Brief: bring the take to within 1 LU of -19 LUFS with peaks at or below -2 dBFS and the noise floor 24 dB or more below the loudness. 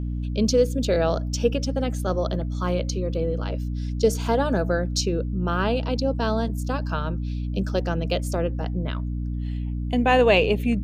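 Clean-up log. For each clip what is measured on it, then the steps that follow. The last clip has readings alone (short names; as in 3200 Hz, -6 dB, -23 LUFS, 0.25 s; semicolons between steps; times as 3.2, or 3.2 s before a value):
hum 60 Hz; harmonics up to 300 Hz; hum level -25 dBFS; loudness -24.5 LUFS; peak -6.0 dBFS; loudness target -19.0 LUFS
-> notches 60/120/180/240/300 Hz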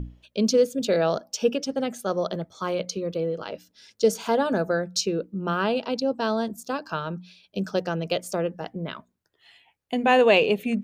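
hum none; loudness -25.5 LUFS; peak -6.5 dBFS; loudness target -19.0 LUFS
-> gain +6.5 dB; limiter -2 dBFS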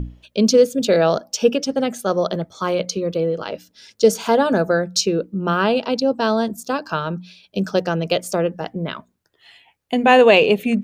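loudness -19.0 LUFS; peak -2.0 dBFS; noise floor -64 dBFS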